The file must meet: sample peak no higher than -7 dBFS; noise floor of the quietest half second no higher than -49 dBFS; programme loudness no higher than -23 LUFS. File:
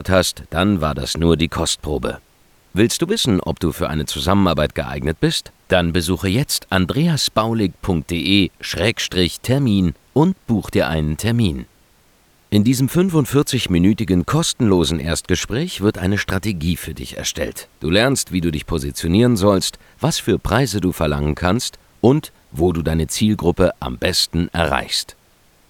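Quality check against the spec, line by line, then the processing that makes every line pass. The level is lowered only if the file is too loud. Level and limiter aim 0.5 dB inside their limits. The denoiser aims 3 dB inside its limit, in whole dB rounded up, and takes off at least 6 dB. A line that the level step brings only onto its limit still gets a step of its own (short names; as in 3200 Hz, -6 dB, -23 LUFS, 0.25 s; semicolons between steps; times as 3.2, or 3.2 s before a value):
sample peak -1.5 dBFS: fail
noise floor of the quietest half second -55 dBFS: OK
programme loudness -18.5 LUFS: fail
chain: gain -5 dB; limiter -7.5 dBFS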